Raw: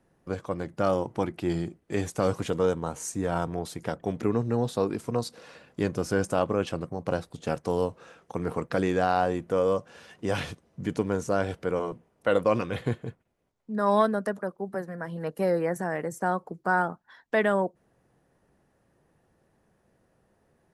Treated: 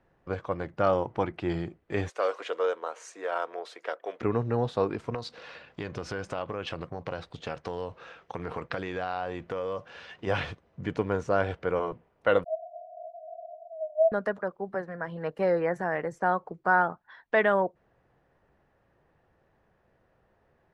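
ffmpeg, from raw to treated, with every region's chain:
-filter_complex "[0:a]asettb=1/sr,asplit=3[a][b][c];[a]atrim=end=2.094[d];[b]atrim=start=2.09:end=4.21,asetpts=PTS-STARTPTS,afade=t=in:d=0.004:c=qsin,afade=t=out:st=2.116:d=0.004:c=qsin,highpass=f=440:w=0.5412,highpass=f=440:w=1.3066,equalizer=f=840:w=3.4:g=-6.5[e];[c]atrim=start=4.206[f];[d][e]acrossfade=d=0.004:c1=hsin:c2=qsin[g];[g][f]acrossfade=d=0.004:c1=qsin:c2=hsin,asettb=1/sr,asplit=3[h][i][j];[h]atrim=end=5.144[k];[i]atrim=start=5.14:end=10.27,asetpts=PTS-STARTPTS,afade=t=in:d=0.004:c=qsin,afade=t=out:st=5.126:d=0.004:c=qsin,equalizer=f=4.1k:w=0.59:g=6.5,acompressor=threshold=-29dB:ratio=5:attack=3.2:release=140:knee=1:detection=peak[l];[j]atrim=start=10.266[m];[k][l]acrossfade=d=0.004:c1=hsin:c2=qsin[n];[n][m]acrossfade=d=0.004:c1=qsin:c2=hsin,asettb=1/sr,asplit=3[o][p][q];[o]atrim=end=12.444[r];[p]atrim=start=12.44:end=14.12,asetpts=PTS-STARTPTS,afade=t=in:d=0.004:c=qsin,afade=t=out:st=1.676:d=0.004:c=qsin,aeval=exprs='val(0)+0.5*0.0596*sgn(val(0))':c=same,asuperpass=centerf=670:order=20:qfactor=6.6[s];[q]atrim=start=14.116[t];[r][s]acrossfade=d=0.004:c1=hsin:c2=qsin[u];[u][t]acrossfade=d=0.004:c1=qsin:c2=hsin,lowpass=3k,equalizer=f=220:w=0.74:g=-7.5,volume=3dB"

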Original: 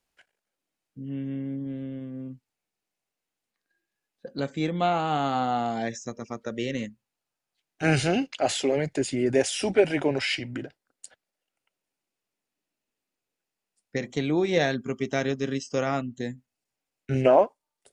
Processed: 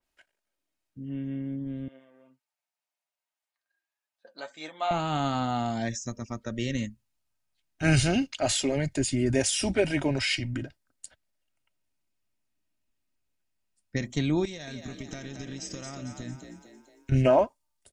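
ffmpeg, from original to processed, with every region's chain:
-filter_complex "[0:a]asettb=1/sr,asplit=3[a][b][c];[a]atrim=end=1.884[d];[b]atrim=start=1.88:end=4.91,asetpts=PTS-STARTPTS,afade=t=in:d=0.004:c=qsin,afade=t=out:st=3.026:d=0.004:c=qsin,highpass=f=730:t=q:w=1.6,flanger=delay=6.4:depth=4:regen=41:speed=1.8:shape=triangular[e];[c]atrim=start=4.906[f];[d][e]acrossfade=d=0.004:c1=hsin:c2=qsin[g];[g][f]acrossfade=d=0.004:c1=qsin:c2=hsin,asettb=1/sr,asplit=3[h][i][j];[h]atrim=end=14.454[k];[i]atrim=start=14.45:end=17.12,asetpts=PTS-STARTPTS,afade=t=in:d=0.004:c=qsin,afade=t=out:st=2.666:d=0.004:c=qsin,highshelf=f=4k:g=9.5,acompressor=threshold=-34dB:ratio=12:attack=3.2:release=140:knee=1:detection=peak,asplit=7[l][m][n][o][p][q][r];[m]adelay=226,afreqshift=50,volume=-6dB[s];[n]adelay=452,afreqshift=100,volume=-11.8dB[t];[o]adelay=678,afreqshift=150,volume=-17.7dB[u];[p]adelay=904,afreqshift=200,volume=-23.5dB[v];[q]adelay=1130,afreqshift=250,volume=-29.4dB[w];[r]adelay=1356,afreqshift=300,volume=-35.2dB[x];[l][s][t][u][v][w][x]amix=inputs=7:normalize=0,atrim=end_sample=117747[y];[j]atrim=start=17.116[z];[k][y]acrossfade=d=0.004:c1=hsin:c2=qsin[aa];[aa][z]acrossfade=d=0.004:c1=qsin:c2=hsin,asubboost=boost=5.5:cutoff=150,aecho=1:1:3.2:0.36,adynamicequalizer=threshold=0.00631:dfrequency=3900:dqfactor=0.7:tfrequency=3900:tqfactor=0.7:attack=5:release=100:ratio=0.375:range=3:mode=boostabove:tftype=highshelf,volume=-2dB"

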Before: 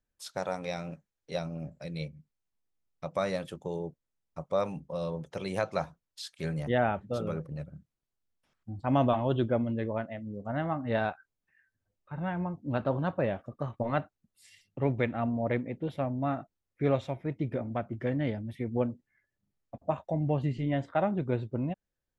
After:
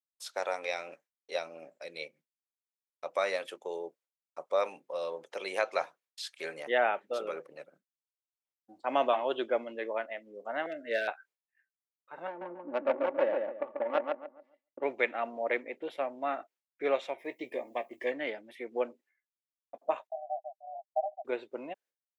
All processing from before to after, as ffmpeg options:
-filter_complex "[0:a]asettb=1/sr,asplit=3[a][b][c];[a]atrim=end=10.664[d];[b]atrim=start=10.66:end=11.08,asetpts=PTS-STARTPTS,afade=t=in:d=0.004:c=qsin,afade=t=out:st=0.416:d=0.004:c=qsin,asoftclip=type=hard:threshold=-20dB,asuperstop=centerf=980:order=12:qfactor=1.2[e];[c]atrim=start=11.076[f];[d][e]acrossfade=d=0.004:c1=hsin:c2=qsin[g];[g][f]acrossfade=d=0.004:c1=qsin:c2=hsin,asettb=1/sr,asplit=3[h][i][j];[h]atrim=end=12.274[k];[i]atrim=start=12.27:end=14.83,asetpts=PTS-STARTPTS,afade=t=in:d=0.004:c=qsin,afade=t=out:st=2.556:d=0.004:c=qsin,aecho=1:1:3.5:0.63,atrim=end_sample=112896,aecho=1:1:140|280|420|560|700:0.708|0.255|0.0917|0.033|0.0119,atrim=end_sample=112896,adynamicsmooth=sensitivity=0.5:basefreq=560[l];[j]atrim=start=14.826[m];[k][l]acrossfade=d=0.004:c1=hsin:c2=qsin[n];[n][m]acrossfade=d=0.004:c1=qsin:c2=hsin,asettb=1/sr,asplit=3[o][p][q];[o]atrim=end=17.184[r];[p]atrim=start=17.18:end=18.12,asetpts=PTS-STARTPTS,afade=t=in:d=0.004:c=qsin,afade=t=out:st=0.936:d=0.004:c=qsin,asuperstop=centerf=1400:order=8:qfactor=3.3,aemphasis=mode=production:type=50fm,asplit=2[s][t];[t]adelay=16,volume=-11dB[u];[s][u]amix=inputs=2:normalize=0,atrim=end_sample=41454[v];[q]atrim=start=18.116[w];[r][v]acrossfade=d=0.004:c1=hsin:c2=qsin[x];[x][w]acrossfade=d=0.004:c1=qsin:c2=hsin,asettb=1/sr,asplit=3[y][z][aa];[y]atrim=end=20.074[ab];[z]atrim=start=20.07:end=21.25,asetpts=PTS-STARTPTS,afade=t=in:d=0.004:c=qsin,afade=t=out:st=1.176:d=0.004:c=qsin,acrusher=bits=3:mix=0:aa=0.5,asuperpass=centerf=690:order=12:qfactor=3.7[ac];[aa]atrim=start=21.246[ad];[ab][ac]acrossfade=d=0.004:c1=hsin:c2=qsin[ae];[ae][ad]acrossfade=d=0.004:c1=qsin:c2=hsin,highpass=f=380:w=0.5412,highpass=f=380:w=1.3066,agate=range=-33dB:threshold=-59dB:ratio=3:detection=peak,adynamicequalizer=threshold=0.00251:dfrequency=2300:dqfactor=1.4:tfrequency=2300:tqfactor=1.4:attack=5:release=100:ratio=0.375:range=3.5:mode=boostabove:tftype=bell"

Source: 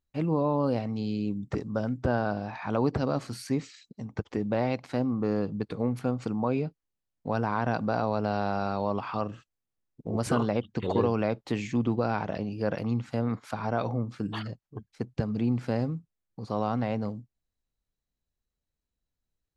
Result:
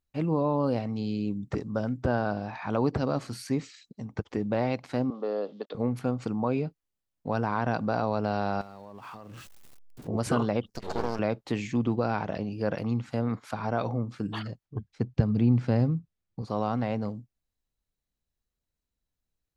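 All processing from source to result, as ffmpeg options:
-filter_complex "[0:a]asettb=1/sr,asplit=3[a][b][c];[a]atrim=end=5.104[d];[b]atrim=start=5.1:end=5.75,asetpts=PTS-STARTPTS,afade=t=in:d=0.004:c=qsin,afade=t=out:st=0.646:d=0.004:c=qsin,aeval=exprs='val(0)*gte(abs(val(0)),0.00251)':c=same,highpass=f=300:w=0.5412,highpass=f=300:w=1.3066,equalizer=f=330:t=q:w=4:g=-8,equalizer=f=580:t=q:w=4:g=7,equalizer=f=1k:t=q:w=4:g=-3,equalizer=f=1.6k:t=q:w=4:g=-5,equalizer=f=2.3k:t=q:w=4:g=-10,equalizer=f=3.4k:t=q:w=4:g=5,lowpass=f=4.4k:w=0.5412,lowpass=f=4.4k:w=1.3066[e];[c]atrim=start=5.746[f];[d][e]acrossfade=d=0.004:c1=hsin:c2=qsin[g];[g][f]acrossfade=d=0.004:c1=qsin:c2=hsin,asettb=1/sr,asplit=3[h][i][j];[h]atrim=end=8.614[k];[i]atrim=start=8.61:end=10.08,asetpts=PTS-STARTPTS,afade=t=in:d=0.004:c=qsin,afade=t=out:st=1.466:d=0.004:c=qsin,aeval=exprs='val(0)+0.5*0.00794*sgn(val(0))':c=same,acompressor=threshold=-39dB:ratio=16:attack=3.2:release=140:knee=1:detection=peak[l];[j]atrim=start=10.076[m];[k][l]acrossfade=d=0.004:c1=hsin:c2=qsin[n];[n][m]acrossfade=d=0.004:c1=qsin:c2=hsin,asettb=1/sr,asplit=3[o][p][q];[o]atrim=end=10.664[r];[p]atrim=start=10.66:end=11.19,asetpts=PTS-STARTPTS,afade=t=in:d=0.004:c=qsin,afade=t=out:st=0.526:d=0.004:c=qsin,highpass=f=260:p=1,highshelf=f=4.1k:t=q:w=3:g=8,aeval=exprs='max(val(0),0)':c=same[s];[q]atrim=start=11.186[t];[r][s]acrossfade=d=0.004:c1=hsin:c2=qsin[u];[u][t]acrossfade=d=0.004:c1=qsin:c2=hsin,asettb=1/sr,asplit=3[v][w][x];[v]atrim=end=14.654[y];[w]atrim=start=14.65:end=16.42,asetpts=PTS-STARTPTS,afade=t=in:d=0.004:c=qsin,afade=t=out:st=1.766:d=0.004:c=qsin,lowpass=6.5k,equalizer=f=82:t=o:w=2.7:g=8[z];[x]atrim=start=16.416[aa];[y][z]acrossfade=d=0.004:c1=hsin:c2=qsin[ab];[ab][aa]acrossfade=d=0.004:c1=qsin:c2=hsin"

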